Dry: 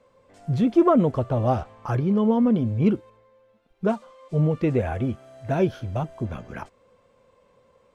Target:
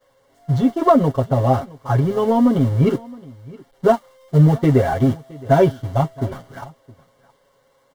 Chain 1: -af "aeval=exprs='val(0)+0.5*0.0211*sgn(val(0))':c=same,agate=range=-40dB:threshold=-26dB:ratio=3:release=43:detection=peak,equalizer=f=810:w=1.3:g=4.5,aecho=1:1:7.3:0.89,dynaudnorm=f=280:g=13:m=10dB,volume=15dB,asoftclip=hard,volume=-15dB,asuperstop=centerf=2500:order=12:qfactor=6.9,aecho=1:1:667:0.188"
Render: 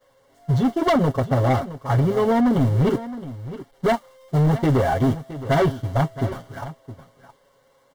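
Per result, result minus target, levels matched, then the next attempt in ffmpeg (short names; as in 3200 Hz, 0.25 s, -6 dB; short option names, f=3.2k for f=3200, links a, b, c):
overloaded stage: distortion +23 dB; echo-to-direct +7.5 dB
-af "aeval=exprs='val(0)+0.5*0.0211*sgn(val(0))':c=same,agate=range=-40dB:threshold=-26dB:ratio=3:release=43:detection=peak,equalizer=f=810:w=1.3:g=4.5,aecho=1:1:7.3:0.89,dynaudnorm=f=280:g=13:m=10dB,volume=4.5dB,asoftclip=hard,volume=-4.5dB,asuperstop=centerf=2500:order=12:qfactor=6.9,aecho=1:1:667:0.188"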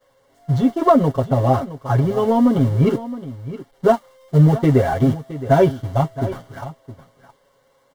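echo-to-direct +7.5 dB
-af "aeval=exprs='val(0)+0.5*0.0211*sgn(val(0))':c=same,agate=range=-40dB:threshold=-26dB:ratio=3:release=43:detection=peak,equalizer=f=810:w=1.3:g=4.5,aecho=1:1:7.3:0.89,dynaudnorm=f=280:g=13:m=10dB,volume=4.5dB,asoftclip=hard,volume=-4.5dB,asuperstop=centerf=2500:order=12:qfactor=6.9,aecho=1:1:667:0.0794"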